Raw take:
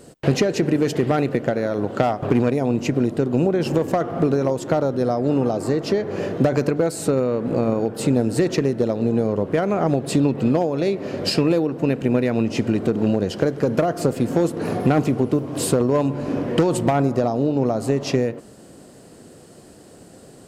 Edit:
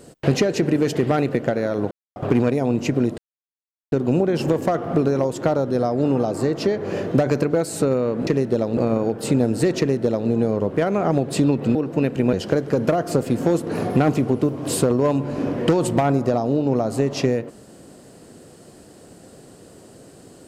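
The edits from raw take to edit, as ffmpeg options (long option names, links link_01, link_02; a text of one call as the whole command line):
ffmpeg -i in.wav -filter_complex "[0:a]asplit=8[link_01][link_02][link_03][link_04][link_05][link_06][link_07][link_08];[link_01]atrim=end=1.91,asetpts=PTS-STARTPTS,afade=type=out:start_time=1.906:duration=0.004:curve=hsin[link_09];[link_02]atrim=start=1.91:end=2.16,asetpts=PTS-STARTPTS,volume=0[link_10];[link_03]atrim=start=2.16:end=3.18,asetpts=PTS-STARTPTS,afade=type=in:duration=0.004:curve=hsin,afade=type=out:start_time=1.016:duration=0.004:curve=hsin,apad=pad_dur=0.74[link_11];[link_04]atrim=start=3.18:end=7.532,asetpts=PTS-STARTPTS,afade=type=in:duration=0.004:curve=hsin[link_12];[link_05]atrim=start=8.548:end=9.052[link_13];[link_06]atrim=start=7.528:end=10.512[link_14];[link_07]atrim=start=11.608:end=12.192[link_15];[link_08]atrim=start=13.228[link_16];[link_09][link_10][link_11][link_12]concat=n=4:v=0:a=1[link_17];[link_17][link_13]acrossfade=duration=0.004:curve1=hsin:curve2=hsin[link_18];[link_18][link_14]acrossfade=duration=0.004:curve1=hsin:curve2=hsin[link_19];[link_19][link_15]acrossfade=duration=0.004:curve1=hsin:curve2=hsin[link_20];[link_20][link_16]acrossfade=duration=0.004:curve1=hsin:curve2=hsin" out.wav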